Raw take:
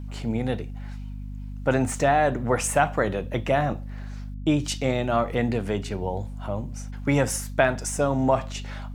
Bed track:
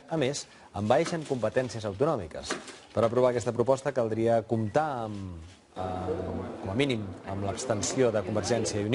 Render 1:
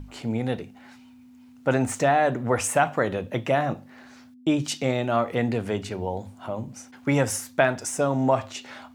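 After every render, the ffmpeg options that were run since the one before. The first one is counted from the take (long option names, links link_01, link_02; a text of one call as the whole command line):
ffmpeg -i in.wav -af "bandreject=frequency=50:width_type=h:width=6,bandreject=frequency=100:width_type=h:width=6,bandreject=frequency=150:width_type=h:width=6,bandreject=frequency=200:width_type=h:width=6" out.wav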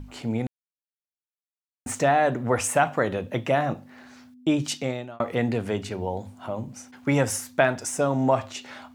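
ffmpeg -i in.wav -filter_complex "[0:a]asplit=4[link_01][link_02][link_03][link_04];[link_01]atrim=end=0.47,asetpts=PTS-STARTPTS,afade=type=out:start_time=0.466:duration=0.004:curve=hsin[link_05];[link_02]atrim=start=0.47:end=1.86,asetpts=PTS-STARTPTS,volume=0[link_06];[link_03]atrim=start=1.86:end=5.2,asetpts=PTS-STARTPTS,afade=type=in:duration=0.004:curve=hsin,afade=type=out:start_time=2.85:duration=0.49[link_07];[link_04]atrim=start=5.2,asetpts=PTS-STARTPTS,afade=type=in:duration=0.004:curve=hsin[link_08];[link_05][link_06][link_07][link_08]concat=n=4:v=0:a=1" out.wav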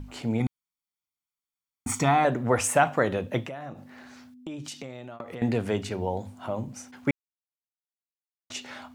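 ffmpeg -i in.wav -filter_complex "[0:a]asettb=1/sr,asplit=3[link_01][link_02][link_03];[link_01]atrim=end=0.404[link_04];[link_02]atrim=start=0.4:end=2.25,asetpts=PTS-STARTPTS,afade=type=in:duration=0.004:curve=qsin,afade=type=out:start_time=1.846:duration=0.004:curve=qsin,aecho=1:1:0.9:0.77,atrim=end_sample=81585[link_05];[link_03]atrim=start=2.246[link_06];[link_04][link_05]acrossfade=duration=0.004:curve1=hsin:curve2=qsin[link_07];[link_07][link_06]acrossfade=duration=0.004:curve1=qsin:curve2=hsin,asettb=1/sr,asplit=3[link_08][link_09][link_10];[link_08]atrim=end=3.434[link_11];[link_09]atrim=start=3.43:end=5.42,asetpts=PTS-STARTPTS,afade=type=in:duration=0.004:curve=qsin,afade=type=out:start_time=1.986:duration=0.004:curve=qsin,acompressor=threshold=-35dB:ratio=6:attack=3.2:release=140:knee=1:detection=peak[link_12];[link_10]atrim=start=5.416[link_13];[link_11][link_12]acrossfade=duration=0.004:curve1=hsin:curve2=qsin[link_14];[link_14][link_13]acrossfade=duration=0.004:curve1=qsin:curve2=hsin,asplit=3[link_15][link_16][link_17];[link_15]atrim=end=7.11,asetpts=PTS-STARTPTS,afade=type=out:start_time=7.106:duration=0.004:curve=hsin[link_18];[link_16]atrim=start=7.11:end=8.5,asetpts=PTS-STARTPTS,volume=0[link_19];[link_17]atrim=start=8.5,asetpts=PTS-STARTPTS,afade=type=in:duration=0.004:curve=hsin[link_20];[link_18][link_19][link_20]concat=n=3:v=0:a=1" out.wav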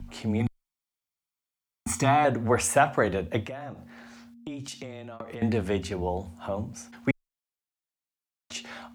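ffmpeg -i in.wav -af "afreqshift=-14" out.wav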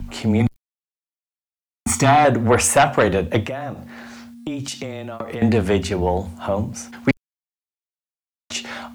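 ffmpeg -i in.wav -af "aeval=exprs='0.398*sin(PI/2*2*val(0)/0.398)':channel_layout=same,acrusher=bits=9:mix=0:aa=0.000001" out.wav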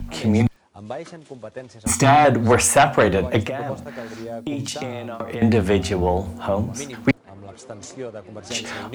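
ffmpeg -i in.wav -i bed.wav -filter_complex "[1:a]volume=-8dB[link_01];[0:a][link_01]amix=inputs=2:normalize=0" out.wav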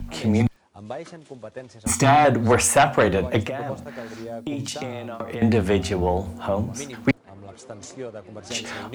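ffmpeg -i in.wav -af "volume=-2dB" out.wav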